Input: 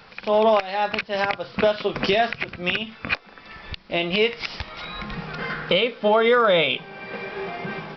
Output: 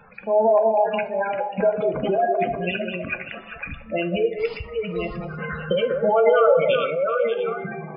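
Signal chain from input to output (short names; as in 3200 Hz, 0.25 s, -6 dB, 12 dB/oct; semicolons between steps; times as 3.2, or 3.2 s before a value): reverse delay 0.564 s, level -5 dB; high shelf 3700 Hz -9 dB; spectral gate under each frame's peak -10 dB strong; delay with a stepping band-pass 0.196 s, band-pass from 520 Hz, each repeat 1.4 oct, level -3 dB; reverb RT60 0.65 s, pre-delay 3 ms, DRR 8 dB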